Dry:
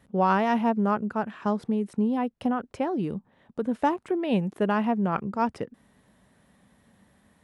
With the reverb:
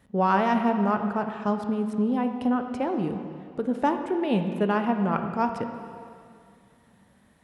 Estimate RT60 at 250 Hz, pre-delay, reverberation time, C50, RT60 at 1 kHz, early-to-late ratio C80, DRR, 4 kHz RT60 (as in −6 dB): 2.4 s, 7 ms, 2.3 s, 7.0 dB, 2.3 s, 8.0 dB, 6.0 dB, 2.1 s